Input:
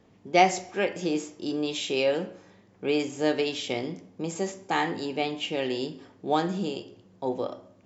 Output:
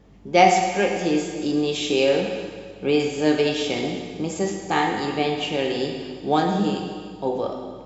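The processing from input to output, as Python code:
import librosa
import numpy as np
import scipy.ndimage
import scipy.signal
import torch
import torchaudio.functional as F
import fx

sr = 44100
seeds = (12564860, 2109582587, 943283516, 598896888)

y = fx.low_shelf(x, sr, hz=200.0, db=4.0)
y = fx.add_hum(y, sr, base_hz=50, snr_db=33)
y = fx.rev_plate(y, sr, seeds[0], rt60_s=1.9, hf_ratio=0.95, predelay_ms=0, drr_db=2.0)
y = y * librosa.db_to_amplitude(3.0)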